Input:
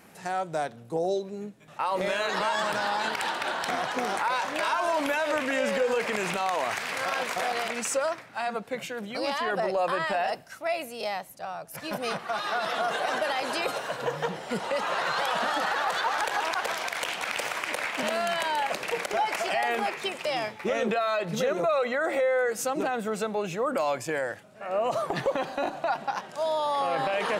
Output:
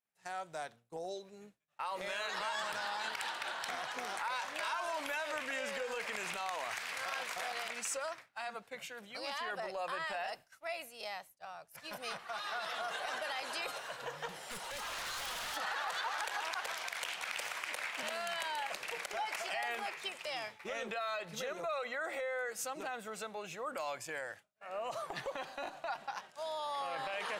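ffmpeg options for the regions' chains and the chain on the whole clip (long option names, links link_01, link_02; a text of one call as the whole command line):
ffmpeg -i in.wav -filter_complex "[0:a]asettb=1/sr,asplit=3[link_01][link_02][link_03];[link_01]atrim=end=14.294[link_04];[link_02]atrim=start=14.29:end=15.57,asetpts=PTS-STARTPTS,afade=type=in:duration=0.004:curve=qsin,afade=type=out:start_time=1.276:duration=0.004:curve=qsin,equalizer=frequency=12000:width_type=o:width=1.3:gain=11,acompressor=mode=upward:threshold=-31dB:ratio=2.5:attack=3.2:release=140:knee=2.83:detection=peak,aeval=exprs='0.0473*(abs(mod(val(0)/0.0473+3,4)-2)-1)':channel_layout=same[link_05];[link_03]atrim=start=15.566[link_06];[link_04][link_05]acrossfade=duration=0.004:curve1=hsin:curve2=qsin[link_07];[link_07][link_06]acrossfade=duration=0.004:curve1=qsin:curve2=hsin,agate=range=-33dB:threshold=-36dB:ratio=3:detection=peak,equalizer=frequency=230:width=0.36:gain=-11.5,volume=-7dB" out.wav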